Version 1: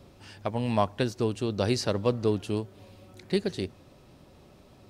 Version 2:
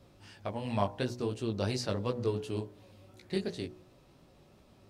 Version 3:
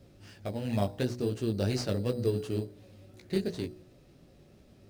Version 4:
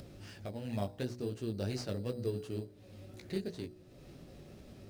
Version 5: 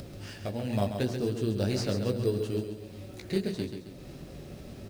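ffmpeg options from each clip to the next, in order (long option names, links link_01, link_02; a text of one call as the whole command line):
ffmpeg -i in.wav -af "flanger=delay=16:depth=5:speed=2.8,bandreject=frequency=61.06:width_type=h:width=4,bandreject=frequency=122.12:width_type=h:width=4,bandreject=frequency=183.18:width_type=h:width=4,bandreject=frequency=244.24:width_type=h:width=4,bandreject=frequency=305.3:width_type=h:width=4,bandreject=frequency=366.36:width_type=h:width=4,bandreject=frequency=427.42:width_type=h:width=4,bandreject=frequency=488.48:width_type=h:width=4,bandreject=frequency=549.54:width_type=h:width=4,bandreject=frequency=610.6:width_type=h:width=4,bandreject=frequency=671.66:width_type=h:width=4,bandreject=frequency=732.72:width_type=h:width=4,bandreject=frequency=793.78:width_type=h:width=4,bandreject=frequency=854.84:width_type=h:width=4,bandreject=frequency=915.9:width_type=h:width=4,bandreject=frequency=976.96:width_type=h:width=4,bandreject=frequency=1038.02:width_type=h:width=4,volume=-2.5dB" out.wav
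ffmpeg -i in.wav -filter_complex "[0:a]equalizer=frequency=1000:width_type=o:width=0.72:gain=-14.5,asplit=2[link_01][link_02];[link_02]acrusher=samples=10:mix=1:aa=0.000001,volume=-5dB[link_03];[link_01][link_03]amix=inputs=2:normalize=0" out.wav
ffmpeg -i in.wav -af "acompressor=mode=upward:threshold=-33dB:ratio=2.5,volume=-7dB" out.wav
ffmpeg -i in.wav -filter_complex "[0:a]acrusher=bits=11:mix=0:aa=0.000001,asplit=2[link_01][link_02];[link_02]aecho=0:1:135|270|405|540|675:0.422|0.181|0.078|0.0335|0.0144[link_03];[link_01][link_03]amix=inputs=2:normalize=0,volume=7.5dB" out.wav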